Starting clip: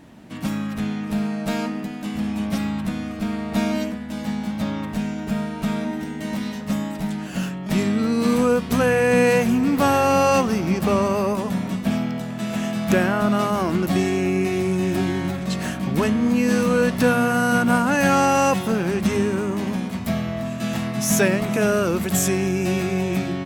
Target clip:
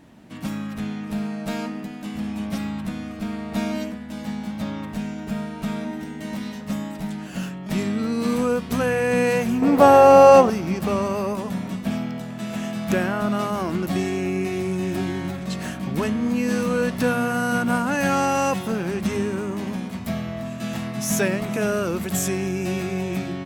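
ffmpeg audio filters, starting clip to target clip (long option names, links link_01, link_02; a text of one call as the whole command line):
ffmpeg -i in.wav -filter_complex "[0:a]asettb=1/sr,asplit=3[link_01][link_02][link_03];[link_01]atrim=end=9.624[link_04];[link_02]atrim=start=9.62:end=10.5,asetpts=PTS-STARTPTS,afade=type=in:duration=0.004:curve=qsin,afade=type=out:start_time=0.876:duration=0.004:curve=qsin,equalizer=frequency=610:width=0.69:gain=13[link_05];[link_03]atrim=start=10.496[link_06];[link_04][link_05]acrossfade=duration=0.004:curve1=hsin:curve2=qsin[link_07];[link_07][link_06]acrossfade=duration=0.004:curve1=qsin:curve2=hsin,volume=-3.5dB" out.wav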